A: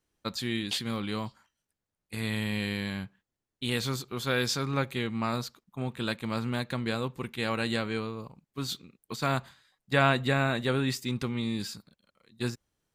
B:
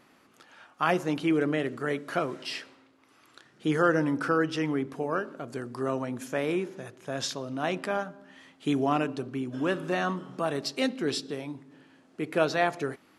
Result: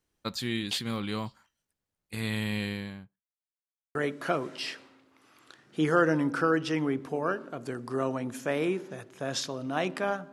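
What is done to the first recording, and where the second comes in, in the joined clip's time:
A
2.52–3.31 studio fade out
3.31–3.95 mute
3.95 switch to B from 1.82 s

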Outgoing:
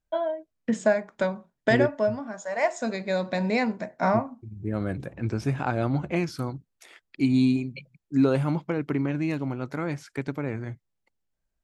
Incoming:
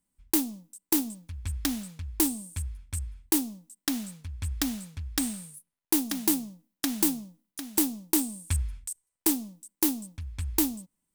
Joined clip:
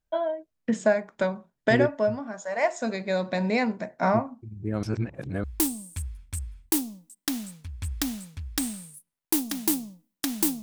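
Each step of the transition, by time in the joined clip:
outgoing
4.83–5.44 reverse
5.44 switch to incoming from 2.04 s

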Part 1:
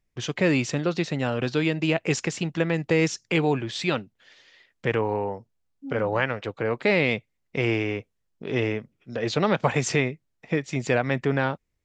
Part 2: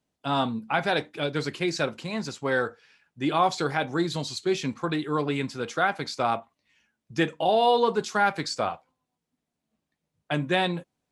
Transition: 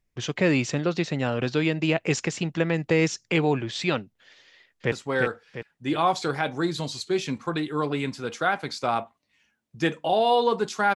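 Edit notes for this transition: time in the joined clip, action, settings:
part 1
4.45–4.92 echo throw 0.35 s, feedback 45%, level -4 dB
4.92 switch to part 2 from 2.28 s

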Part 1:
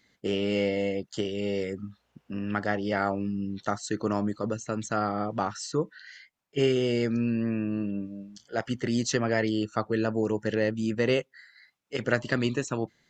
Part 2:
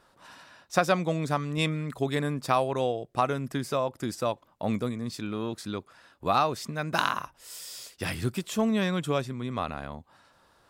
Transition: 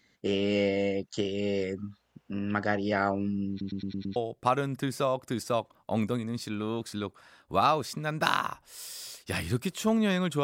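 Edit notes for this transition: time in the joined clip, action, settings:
part 1
3.5 stutter in place 0.11 s, 6 plays
4.16 switch to part 2 from 2.88 s

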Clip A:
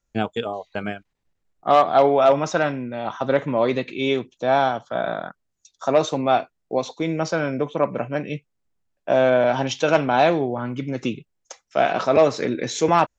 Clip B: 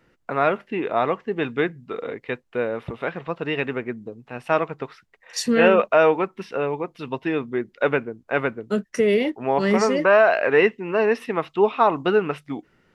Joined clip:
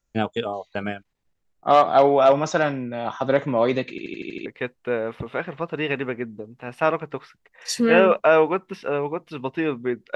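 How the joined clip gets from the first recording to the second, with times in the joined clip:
clip A
3.9 stutter in place 0.08 s, 7 plays
4.46 switch to clip B from 2.14 s

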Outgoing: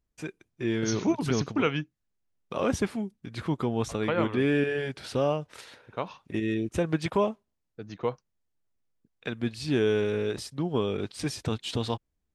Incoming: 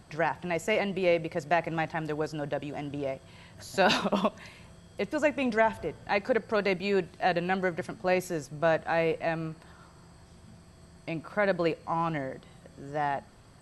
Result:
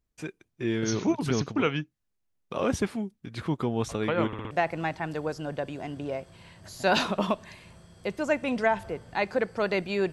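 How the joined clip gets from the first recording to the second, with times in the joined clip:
outgoing
4.27 stutter in place 0.06 s, 4 plays
4.51 switch to incoming from 1.45 s

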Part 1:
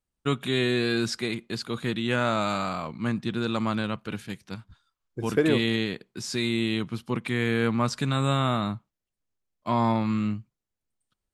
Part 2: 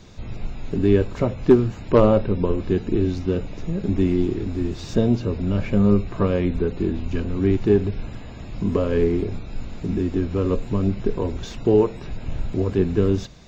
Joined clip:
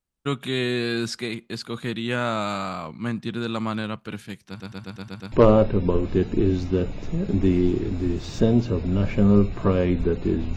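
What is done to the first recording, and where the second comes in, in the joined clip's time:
part 1
4.48 stutter in place 0.12 s, 7 plays
5.32 switch to part 2 from 1.87 s

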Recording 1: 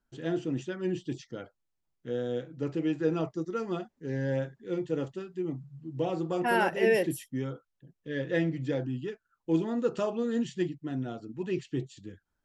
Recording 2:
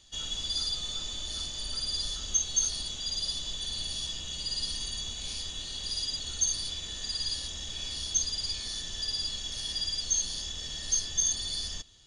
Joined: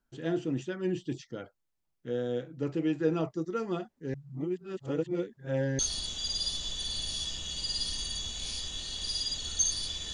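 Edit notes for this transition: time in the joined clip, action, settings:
recording 1
4.14–5.79 reverse
5.79 switch to recording 2 from 2.61 s

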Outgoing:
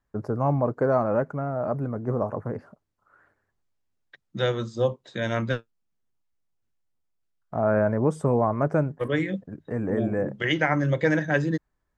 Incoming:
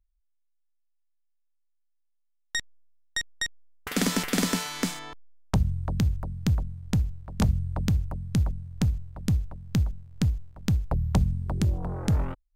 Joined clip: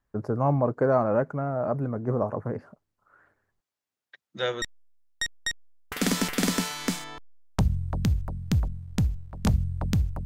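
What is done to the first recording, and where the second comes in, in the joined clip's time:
outgoing
3.6–4.62 HPF 580 Hz 6 dB/oct
4.62 switch to incoming from 2.57 s

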